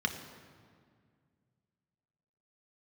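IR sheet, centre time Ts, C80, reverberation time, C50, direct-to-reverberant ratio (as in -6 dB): 24 ms, 10.0 dB, 2.0 s, 8.5 dB, 4.5 dB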